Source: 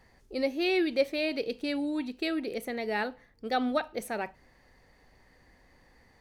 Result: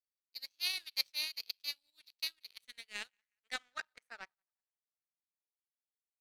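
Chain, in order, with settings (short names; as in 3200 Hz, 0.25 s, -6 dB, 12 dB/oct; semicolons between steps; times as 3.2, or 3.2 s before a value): HPF 270 Hz; tilt shelf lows -10 dB, about 1300 Hz; on a send: thinning echo 0.181 s, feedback 62%, level -23.5 dB; on the sum: band-pass sweep 4900 Hz -> 710 Hz, 2.21–5.13; power-law curve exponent 2; noise-modulated level, depth 60%; gain +7.5 dB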